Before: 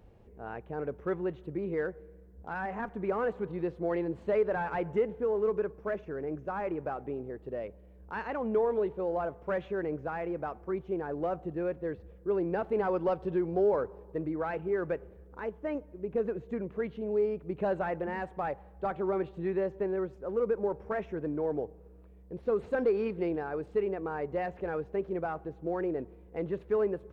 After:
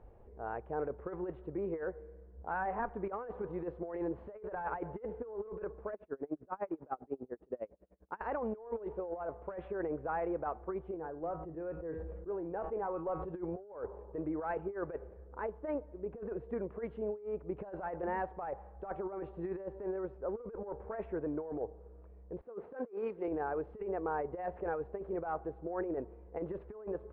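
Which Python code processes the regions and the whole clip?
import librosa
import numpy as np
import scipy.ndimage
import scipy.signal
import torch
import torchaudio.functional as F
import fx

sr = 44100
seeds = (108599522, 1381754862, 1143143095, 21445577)

y = fx.chain(x, sr, fx.highpass(hz=110.0, slope=12),
    fx.peak_eq(hz=250.0, db=7.0, octaves=0.87),
    fx.tremolo_db(hz=10.0, depth_db=34), at=(5.93, 8.21))
y = fx.chain(y, sr, fx.high_shelf(hz=2500.0, db=-9.0),
    fx.comb_fb(f0_hz=160.0, decay_s=0.31, harmonics='all', damping=0.0, mix_pct=70),
    fx.sustainer(db_per_s=28.0), at=(10.94, 13.34))
y = fx.chain(y, sr, fx.highpass(hz=190.0, slope=12),
    fx.band_widen(depth_pct=100), at=(22.41, 23.28))
y = scipy.signal.sosfilt(scipy.signal.butter(2, 1100.0, 'lowpass', fs=sr, output='sos'), y)
y = fx.peak_eq(y, sr, hz=170.0, db=-12.5, octaves=2.4)
y = fx.over_compress(y, sr, threshold_db=-39.0, ratio=-0.5)
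y = y * librosa.db_to_amplitude(2.5)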